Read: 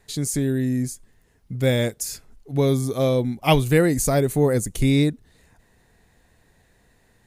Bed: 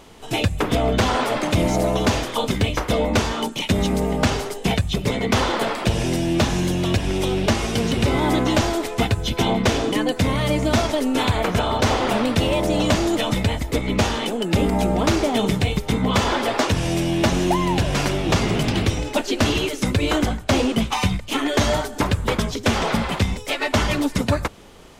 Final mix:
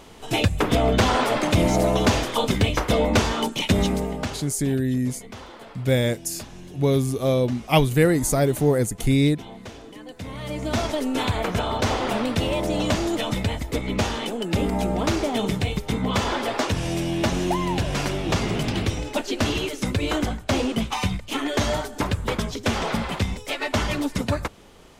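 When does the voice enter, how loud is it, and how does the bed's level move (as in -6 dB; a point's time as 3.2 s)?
4.25 s, -0.5 dB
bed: 3.81 s 0 dB
4.76 s -20.5 dB
9.98 s -20.5 dB
10.84 s -4 dB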